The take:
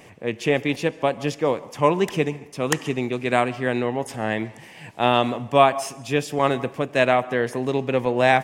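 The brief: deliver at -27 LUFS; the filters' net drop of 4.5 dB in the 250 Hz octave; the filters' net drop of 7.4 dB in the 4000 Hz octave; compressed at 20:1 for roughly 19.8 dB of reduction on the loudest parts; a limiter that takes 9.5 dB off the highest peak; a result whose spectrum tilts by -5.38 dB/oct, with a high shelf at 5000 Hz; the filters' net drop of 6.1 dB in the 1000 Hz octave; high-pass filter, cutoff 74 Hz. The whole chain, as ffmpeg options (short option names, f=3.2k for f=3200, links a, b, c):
-af "highpass=74,equalizer=f=250:t=o:g=-5,equalizer=f=1k:t=o:g=-8,equalizer=f=4k:t=o:g=-6.5,highshelf=f=5k:g=-7,acompressor=threshold=-34dB:ratio=20,volume=15dB,alimiter=limit=-15dB:level=0:latency=1"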